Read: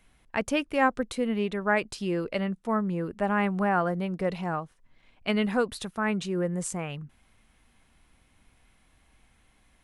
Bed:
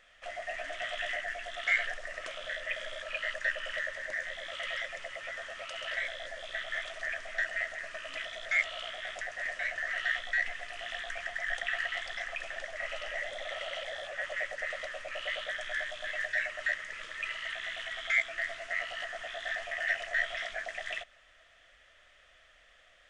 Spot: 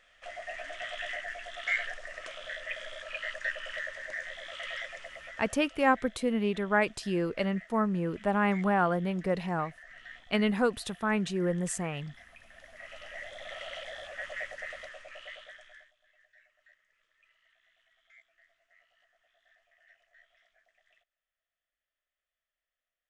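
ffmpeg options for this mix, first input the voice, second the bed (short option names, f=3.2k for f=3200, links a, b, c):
-filter_complex "[0:a]adelay=5050,volume=-1dB[a];[1:a]volume=12dB,afade=t=out:st=4.9:d=0.95:silence=0.177828,afade=t=in:st=12.46:d=1.19:silence=0.199526,afade=t=out:st=14.44:d=1.49:silence=0.0354813[b];[a][b]amix=inputs=2:normalize=0"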